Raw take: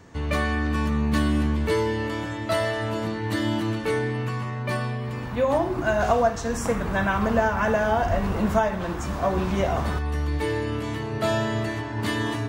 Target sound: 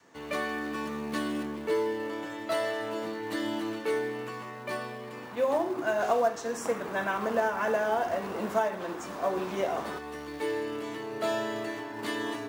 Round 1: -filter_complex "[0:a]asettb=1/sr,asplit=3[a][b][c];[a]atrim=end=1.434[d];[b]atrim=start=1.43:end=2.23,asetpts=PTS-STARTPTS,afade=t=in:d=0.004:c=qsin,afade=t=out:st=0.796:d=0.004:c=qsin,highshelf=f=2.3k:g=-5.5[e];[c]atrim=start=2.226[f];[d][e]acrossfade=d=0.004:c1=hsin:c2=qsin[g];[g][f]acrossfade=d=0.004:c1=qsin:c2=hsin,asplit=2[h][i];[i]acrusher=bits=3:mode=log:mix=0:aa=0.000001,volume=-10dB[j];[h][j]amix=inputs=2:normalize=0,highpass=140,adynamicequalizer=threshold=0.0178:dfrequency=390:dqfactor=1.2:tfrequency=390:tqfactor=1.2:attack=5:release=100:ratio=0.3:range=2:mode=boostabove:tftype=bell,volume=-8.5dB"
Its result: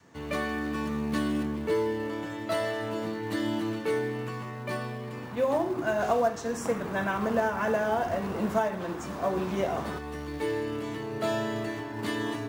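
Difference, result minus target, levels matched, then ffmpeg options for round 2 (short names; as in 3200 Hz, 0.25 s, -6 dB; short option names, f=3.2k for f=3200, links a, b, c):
125 Hz band +9.0 dB
-filter_complex "[0:a]asettb=1/sr,asplit=3[a][b][c];[a]atrim=end=1.434[d];[b]atrim=start=1.43:end=2.23,asetpts=PTS-STARTPTS,afade=t=in:d=0.004:c=qsin,afade=t=out:st=0.796:d=0.004:c=qsin,highshelf=f=2.3k:g=-5.5[e];[c]atrim=start=2.226[f];[d][e]acrossfade=d=0.004:c1=hsin:c2=qsin[g];[g][f]acrossfade=d=0.004:c1=qsin:c2=hsin,asplit=2[h][i];[i]acrusher=bits=3:mode=log:mix=0:aa=0.000001,volume=-10dB[j];[h][j]amix=inputs=2:normalize=0,highpass=300,adynamicequalizer=threshold=0.0178:dfrequency=390:dqfactor=1.2:tfrequency=390:tqfactor=1.2:attack=5:release=100:ratio=0.3:range=2:mode=boostabove:tftype=bell,volume=-8.5dB"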